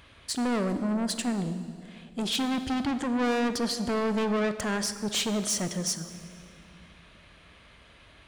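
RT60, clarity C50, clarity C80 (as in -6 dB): 2.3 s, 11.0 dB, 12.0 dB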